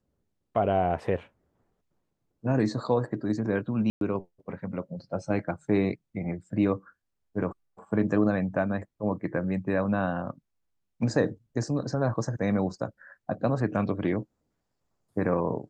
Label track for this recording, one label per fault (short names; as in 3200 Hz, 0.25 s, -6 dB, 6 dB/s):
3.900000	4.010000	gap 0.112 s